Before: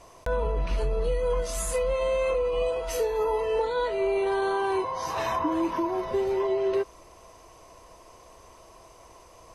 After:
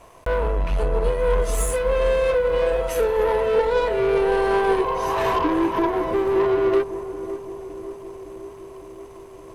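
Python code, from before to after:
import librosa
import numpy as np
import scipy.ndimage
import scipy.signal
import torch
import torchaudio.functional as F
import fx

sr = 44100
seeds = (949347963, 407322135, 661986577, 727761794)

p1 = fx.peak_eq(x, sr, hz=5100.0, db=-10.0, octaves=0.93)
p2 = fx.leveller(p1, sr, passes=2)
p3 = p2 + fx.echo_filtered(p2, sr, ms=562, feedback_pct=79, hz=910.0, wet_db=-8.5, dry=0)
p4 = fx.upward_expand(p3, sr, threshold_db=-31.0, expansion=1.5)
y = p4 * 10.0 ** (3.5 / 20.0)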